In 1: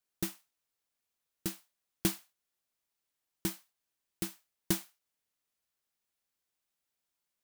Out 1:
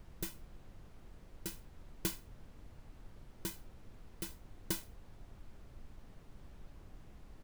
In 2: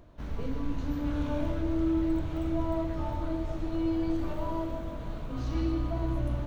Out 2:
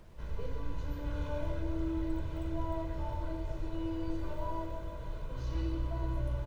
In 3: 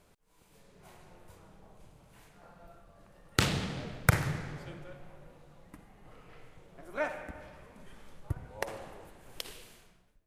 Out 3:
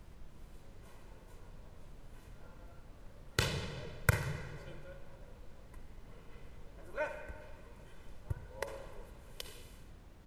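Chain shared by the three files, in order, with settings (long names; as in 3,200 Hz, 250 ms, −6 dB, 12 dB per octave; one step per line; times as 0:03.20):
comb filter 2 ms, depth 74%
background noise brown −44 dBFS
level −7 dB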